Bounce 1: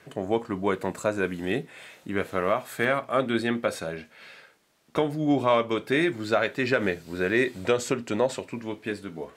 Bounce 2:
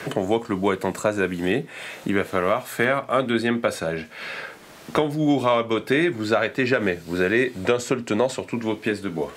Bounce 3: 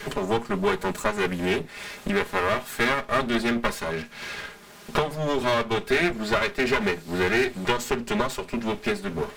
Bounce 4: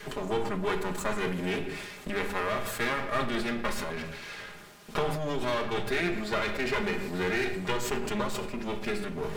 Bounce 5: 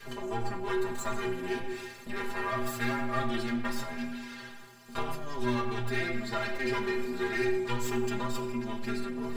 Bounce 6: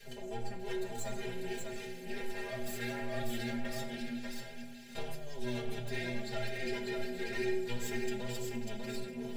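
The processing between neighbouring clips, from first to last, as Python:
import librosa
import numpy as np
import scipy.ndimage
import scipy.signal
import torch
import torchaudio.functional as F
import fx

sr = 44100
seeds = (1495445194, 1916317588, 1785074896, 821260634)

y1 = fx.band_squash(x, sr, depth_pct=70)
y1 = y1 * librosa.db_to_amplitude(3.5)
y2 = fx.lower_of_two(y1, sr, delay_ms=4.9)
y2 = fx.peak_eq(y2, sr, hz=620.0, db=-4.0, octaves=0.52)
y3 = fx.room_shoebox(y2, sr, seeds[0], volume_m3=370.0, walls='mixed', distance_m=0.49)
y3 = fx.sustainer(y3, sr, db_per_s=36.0)
y3 = y3 * librosa.db_to_amplitude(-7.5)
y4 = fx.stiff_resonator(y3, sr, f0_hz=120.0, decay_s=0.27, stiffness=0.008)
y4 = fx.rev_fdn(y4, sr, rt60_s=1.6, lf_ratio=0.9, hf_ratio=0.7, size_ms=25.0, drr_db=9.5)
y4 = y4 * librosa.db_to_amplitude(6.0)
y5 = fx.fixed_phaser(y4, sr, hz=300.0, stages=6)
y5 = y5 + 10.0 ** (-4.0 / 20.0) * np.pad(y5, (int(594 * sr / 1000.0), 0))[:len(y5)]
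y5 = y5 * librosa.db_to_amplitude(-3.5)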